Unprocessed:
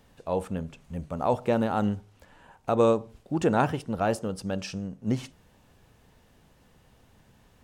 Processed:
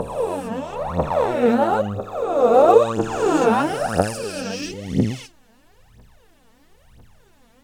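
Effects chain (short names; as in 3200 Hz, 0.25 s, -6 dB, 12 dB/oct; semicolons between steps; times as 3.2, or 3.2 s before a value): spectral swells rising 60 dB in 2.74 s; 1.57–2.77 dynamic EQ 520 Hz, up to +7 dB, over -31 dBFS, Q 0.73; phaser 1 Hz, delay 4.6 ms, feedback 80%; gain -3 dB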